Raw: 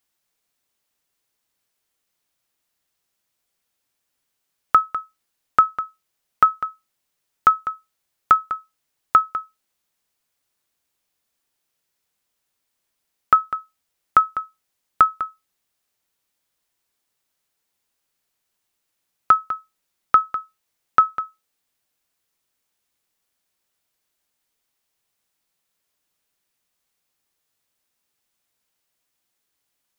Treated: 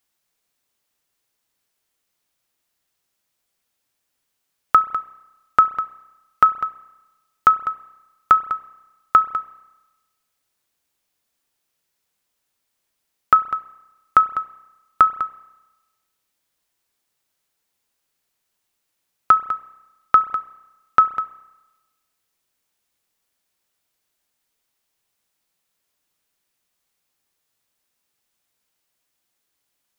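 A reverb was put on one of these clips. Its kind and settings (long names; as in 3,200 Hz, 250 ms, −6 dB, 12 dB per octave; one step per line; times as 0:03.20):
spring reverb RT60 1.1 s, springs 31 ms, chirp 40 ms, DRR 15 dB
level +1 dB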